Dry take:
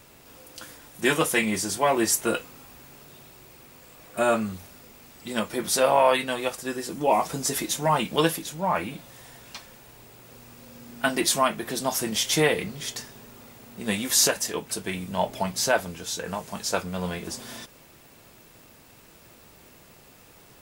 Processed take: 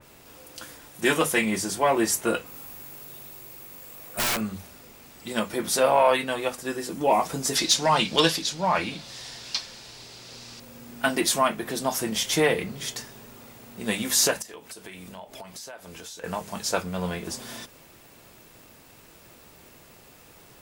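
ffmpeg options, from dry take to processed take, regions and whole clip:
ffmpeg -i in.wav -filter_complex "[0:a]asettb=1/sr,asplit=3[link_01][link_02][link_03];[link_01]atrim=end=2.464[link_04];[link_02]atrim=start=2.46:end=4.41,asetpts=PTS-STARTPTS,afade=type=in:duration=0.004:curve=qsin,afade=type=out:start_time=1.946:duration=0.004:curve=qsin,equalizer=frequency=14000:width_type=o:width=0.89:gain=10,bandreject=frequency=73.31:width_type=h:width=4,bandreject=frequency=146.62:width_type=h:width=4,bandreject=frequency=219.93:width_type=h:width=4,bandreject=frequency=293.24:width_type=h:width=4,aeval=exprs='(mod(10.6*val(0)+1,2)-1)/10.6':channel_layout=same[link_05];[link_03]atrim=start=4.406[link_06];[link_04][link_05]acrossfade=duration=0.004:curve1=hsin:curve2=qsin[link_07];[link_07][link_06]acrossfade=duration=0.004:curve1=qsin:curve2=hsin,asettb=1/sr,asplit=3[link_08][link_09][link_10];[link_08]atrim=end=7.554[link_11];[link_09]atrim=start=7.55:end=10.6,asetpts=PTS-STARTPTS,afade=type=in:duration=0.004:curve=qsin,afade=type=out:start_time=3.046:duration=0.004:curve=qsin,lowpass=frequency=4700:width_type=q:width=2.6,aemphasis=mode=production:type=75kf[link_12];[link_10]atrim=start=10.596[link_13];[link_11][link_12]acrossfade=duration=0.004:curve1=hsin:curve2=qsin[link_14];[link_14][link_13]acrossfade=duration=0.004:curve1=qsin:curve2=hsin,asettb=1/sr,asplit=3[link_15][link_16][link_17];[link_15]atrim=end=14.424[link_18];[link_16]atrim=start=14.42:end=16.24,asetpts=PTS-STARTPTS,afade=type=in:duration=0.004:curve=qsin,afade=type=out:start_time=1.816:duration=0.004:curve=qsin,equalizer=frequency=130:width=0.73:gain=-8,acompressor=threshold=-38dB:ratio=12:attack=3.2:release=140:knee=1:detection=peak[link_19];[link_17]atrim=start=16.236[link_20];[link_18][link_19]acrossfade=duration=0.004:curve1=hsin:curve2=qsin[link_21];[link_21][link_20]acrossfade=duration=0.004:curve1=qsin:curve2=hsin,bandreject=frequency=50:width_type=h:width=6,bandreject=frequency=100:width_type=h:width=6,bandreject=frequency=150:width_type=h:width=6,bandreject=frequency=200:width_type=h:width=6,bandreject=frequency=250:width_type=h:width=6,acontrast=62,adynamicequalizer=threshold=0.0224:dfrequency=2500:dqfactor=0.7:tfrequency=2500:tqfactor=0.7:attack=5:release=100:ratio=0.375:range=1.5:mode=cutabove:tftype=highshelf,volume=-5.5dB" out.wav

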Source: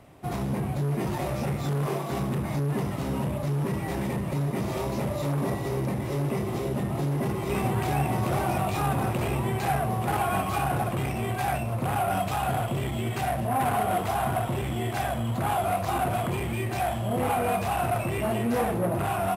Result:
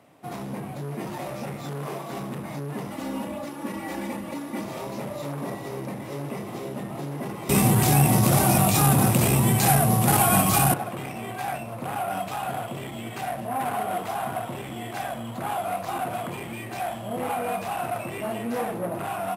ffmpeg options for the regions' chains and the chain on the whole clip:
ffmpeg -i in.wav -filter_complex "[0:a]asettb=1/sr,asplit=3[link_01][link_02][link_03];[link_01]atrim=end=2.904[link_04];[link_02]atrim=start=2.9:end=4.64,asetpts=PTS-STARTPTS,afade=type=in:duration=0.004:curve=qsin,afade=type=out:start_time=1.736:duration=0.004:curve=qsin,bandreject=frequency=570:width=15,aecho=1:1:3.5:0.89,atrim=end_sample=76734[link_05];[link_03]atrim=start=4.636[link_06];[link_04][link_05]acrossfade=duration=0.004:curve1=hsin:curve2=qsin[link_07];[link_07][link_06]acrossfade=duration=0.004:curve1=qsin:curve2=hsin,asettb=1/sr,asplit=3[link_08][link_09][link_10];[link_08]atrim=end=7.494[link_11];[link_09]atrim=start=7.49:end=10.74,asetpts=PTS-STARTPTS,afade=type=in:duration=0.004:curve=qsin,afade=type=out:start_time=3.246:duration=0.004:curve=qsin,bass=frequency=250:gain=12,treble=frequency=4000:gain=15,acontrast=68[link_12];[link_10]atrim=start=10.736[link_13];[link_11][link_12]acrossfade=duration=0.004:curve1=hsin:curve2=qsin[link_14];[link_14][link_13]acrossfade=duration=0.004:curve1=qsin:curve2=hsin,highpass=180,bandreject=frequency=380:width=12,volume=-2dB" out.wav

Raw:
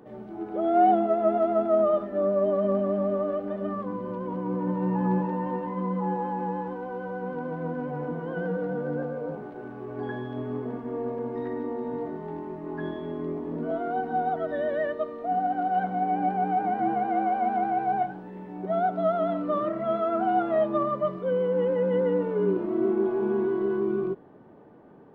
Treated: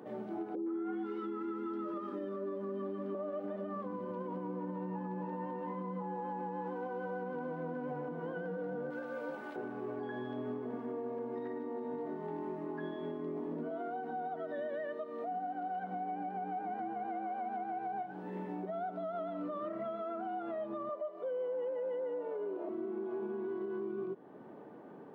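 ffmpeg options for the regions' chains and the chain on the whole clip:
ffmpeg -i in.wav -filter_complex "[0:a]asettb=1/sr,asplit=3[link_01][link_02][link_03];[link_01]atrim=end=0.554[link_04];[link_02]atrim=start=0.55:end=3.15,asetpts=PTS-STARTPTS,afade=type=in:duration=0.004:curve=qsin,afade=type=out:start_time=2.596:duration=0.004:curve=qsin,asuperstop=centerf=670:order=8:qfactor=3,aecho=1:1:2.9:0.41,atrim=end_sample=114660,acrossover=split=740|2400[link_05][link_06][link_07];[link_06]adelay=110[link_08];[link_07]adelay=310[link_09];[link_05][link_08][link_09]amix=inputs=3:normalize=0,atrim=end_sample=114660[link_10];[link_03]atrim=start=3.146[link_11];[link_04][link_10]acrossfade=duration=0.004:curve1=hsin:curve2=qsin[link_12];[link_12][link_11]acrossfade=duration=0.004:curve1=qsin:curve2=hsin,asettb=1/sr,asplit=3[link_13][link_14][link_15];[link_13]atrim=end=8.904[link_16];[link_14]atrim=start=8.9:end=9.56,asetpts=PTS-STARTPTS,afade=type=in:duration=0.004:curve=qsin,afade=type=out:start_time=0.656:duration=0.004:curve=qsin,tiltshelf=frequency=1100:gain=-9,aecho=1:1:3.4:0.51,atrim=end_sample=29106[link_17];[link_15]atrim=start=9.556[link_18];[link_16][link_17]acrossfade=duration=0.004:curve1=hsin:curve2=qsin[link_19];[link_19][link_18]acrossfade=duration=0.004:curve1=qsin:curve2=hsin,asettb=1/sr,asplit=3[link_20][link_21][link_22];[link_20]atrim=end=20.894[link_23];[link_21]atrim=start=20.89:end=22.69,asetpts=PTS-STARTPTS,afade=type=in:duration=0.004:curve=qsin,afade=type=out:start_time=1.796:duration=0.004:curve=qsin,highpass=frequency=290:width=0.5412,highpass=frequency=290:width=1.3066,equalizer=frequency=670:width=2.4:gain=12.5[link_24];[link_22]atrim=start=22.686[link_25];[link_23][link_24]acrossfade=duration=0.004:curve1=hsin:curve2=qsin[link_26];[link_26][link_25]acrossfade=duration=0.004:curve1=qsin:curve2=hsin,highpass=180,acompressor=threshold=-29dB:ratio=6,alimiter=level_in=8.5dB:limit=-24dB:level=0:latency=1:release=329,volume=-8.5dB,volume=1dB" out.wav

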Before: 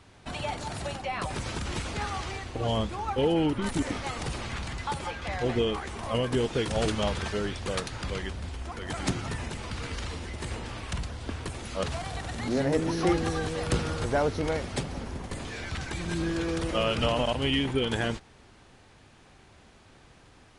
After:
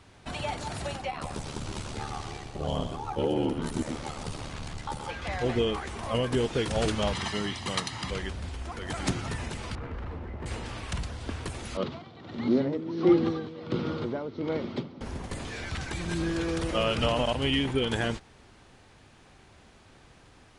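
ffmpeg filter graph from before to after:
ffmpeg -i in.wav -filter_complex "[0:a]asettb=1/sr,asplit=3[link_01][link_02][link_03];[link_01]atrim=end=1.104[link_04];[link_02]atrim=start=1.1:end=5.09,asetpts=PTS-STARTPTS,afade=type=in:duration=0.004:curve=qsin,afade=type=out:start_time=3.986:duration=0.004:curve=qsin,equalizer=frequency=2000:width=1.2:gain=-5.5,aeval=exprs='val(0)*sin(2*PI*37*n/s)':channel_layout=same,aecho=1:1:125:0.376,atrim=end_sample=175959[link_05];[link_03]atrim=start=5.086[link_06];[link_04][link_05]acrossfade=duration=0.004:curve1=hsin:curve2=qsin[link_07];[link_07][link_06]acrossfade=duration=0.004:curve1=qsin:curve2=hsin,asettb=1/sr,asplit=3[link_08][link_09][link_10];[link_08]atrim=end=7.134[link_11];[link_09]atrim=start=7.13:end=8.11,asetpts=PTS-STARTPTS,afade=type=in:duration=0.004:curve=qsin,afade=type=out:start_time=0.976:duration=0.004:curve=qsin,highpass=130,equalizer=frequency=3700:width_type=o:width=1.5:gain=3.5,aecho=1:1:1:0.57,atrim=end_sample=43218[link_12];[link_10]atrim=start=8.106[link_13];[link_11][link_12]acrossfade=duration=0.004:curve1=hsin:curve2=qsin[link_14];[link_14][link_13]acrossfade=duration=0.004:curve1=qsin:curve2=hsin,asettb=1/sr,asplit=3[link_15][link_16][link_17];[link_15]atrim=end=9.754[link_18];[link_16]atrim=start=9.75:end=10.46,asetpts=PTS-STARTPTS,afade=type=in:duration=0.004:curve=qsin,afade=type=out:start_time=0.706:duration=0.004:curve=qsin,lowpass=1300,aeval=exprs='clip(val(0),-1,0.0211)':channel_layout=same[link_19];[link_17]atrim=start=10.456[link_20];[link_18][link_19]acrossfade=duration=0.004:curve1=hsin:curve2=qsin[link_21];[link_21][link_20]acrossfade=duration=0.004:curve1=qsin:curve2=hsin,asettb=1/sr,asplit=3[link_22][link_23][link_24];[link_22]atrim=end=11.774[link_25];[link_23]atrim=start=11.77:end=15.01,asetpts=PTS-STARTPTS,afade=type=in:duration=0.004:curve=qsin,afade=type=out:start_time=3.236:duration=0.004:curve=qsin,tremolo=f=1.4:d=0.72,highpass=frequency=110:width=0.5412,highpass=frequency=110:width=1.3066,equalizer=frequency=230:width_type=q:width=4:gain=7,equalizer=frequency=350:width_type=q:width=4:gain=7,equalizer=frequency=750:width_type=q:width=4:gain=-6,equalizer=frequency=1700:width_type=q:width=4:gain=-9,equalizer=frequency=2600:width_type=q:width=4:gain=-6,lowpass=frequency=4000:width=0.5412,lowpass=frequency=4000:width=1.3066[link_26];[link_24]atrim=start=15.006[link_27];[link_25][link_26]acrossfade=duration=0.004:curve1=hsin:curve2=qsin[link_28];[link_28][link_27]acrossfade=duration=0.004:curve1=qsin:curve2=hsin" out.wav

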